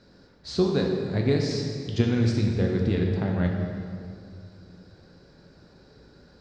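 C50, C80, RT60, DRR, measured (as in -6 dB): 2.5 dB, 4.0 dB, 2.3 s, 0.0 dB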